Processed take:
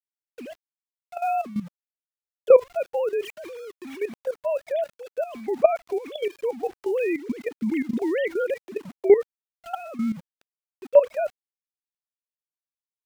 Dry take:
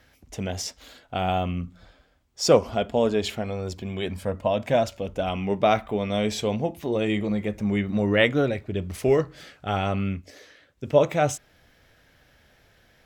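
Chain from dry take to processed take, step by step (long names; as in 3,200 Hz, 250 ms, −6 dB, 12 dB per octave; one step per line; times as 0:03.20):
three sine waves on the formant tracks
centre clipping without the shift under −42 dBFS
output level in coarse steps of 14 dB
level +4.5 dB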